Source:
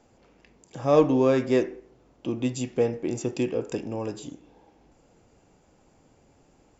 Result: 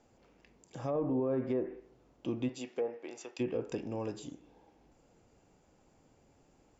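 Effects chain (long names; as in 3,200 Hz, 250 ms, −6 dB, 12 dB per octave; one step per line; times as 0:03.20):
treble cut that deepens with the level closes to 1,000 Hz, closed at −18 dBFS
0:02.48–0:03.39: high-pass filter 280 Hz → 950 Hz 12 dB per octave
brickwall limiter −18.5 dBFS, peak gain reduction 10.5 dB
level −6 dB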